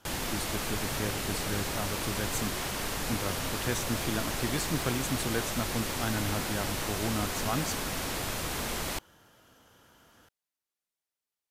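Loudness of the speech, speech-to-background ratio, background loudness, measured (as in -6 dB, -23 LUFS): -35.5 LUFS, -2.5 dB, -33.0 LUFS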